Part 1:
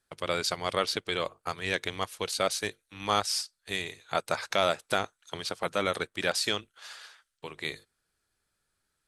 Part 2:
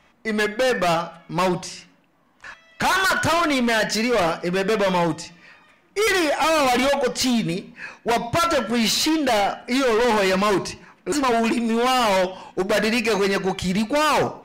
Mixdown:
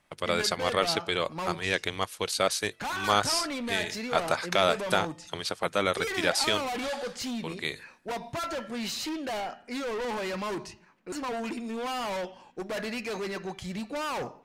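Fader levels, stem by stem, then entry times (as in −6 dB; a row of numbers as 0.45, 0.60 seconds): +2.0, −13.5 decibels; 0.00, 0.00 seconds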